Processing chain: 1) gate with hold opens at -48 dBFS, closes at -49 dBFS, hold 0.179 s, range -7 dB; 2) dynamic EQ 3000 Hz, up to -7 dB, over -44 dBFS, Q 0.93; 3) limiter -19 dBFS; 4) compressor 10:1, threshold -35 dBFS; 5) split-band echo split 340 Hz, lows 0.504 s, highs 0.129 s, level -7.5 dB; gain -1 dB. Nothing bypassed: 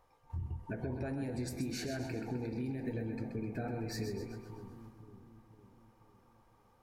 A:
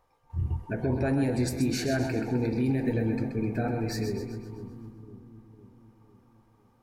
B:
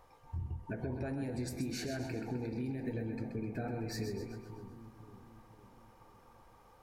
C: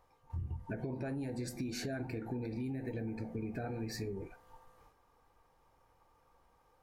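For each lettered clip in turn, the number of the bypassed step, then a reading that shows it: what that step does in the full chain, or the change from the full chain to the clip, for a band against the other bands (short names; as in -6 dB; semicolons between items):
4, mean gain reduction 8.5 dB; 1, momentary loudness spread change +2 LU; 5, echo-to-direct -6.0 dB to none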